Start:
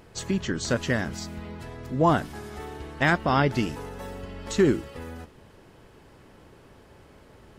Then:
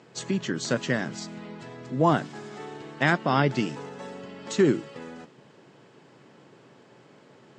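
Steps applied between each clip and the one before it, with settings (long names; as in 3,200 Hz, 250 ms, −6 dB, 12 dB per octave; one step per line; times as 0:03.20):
Chebyshev band-pass filter 130–7,700 Hz, order 4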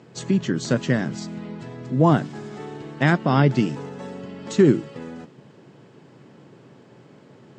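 low-shelf EQ 340 Hz +10 dB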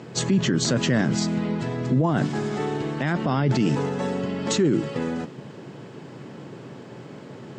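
in parallel at 0 dB: compressor whose output falls as the input rises −24 dBFS
on the sum: brickwall limiter −12.5 dBFS, peak gain reduction 10.5 dB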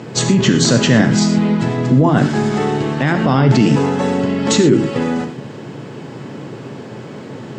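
reverb whose tail is shaped and stops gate 140 ms flat, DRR 6.5 dB
level +8.5 dB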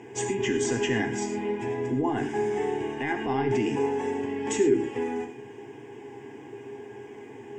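phaser with its sweep stopped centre 860 Hz, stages 8
tuned comb filter 410 Hz, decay 0.22 s, harmonics all, mix 80%
level +1.5 dB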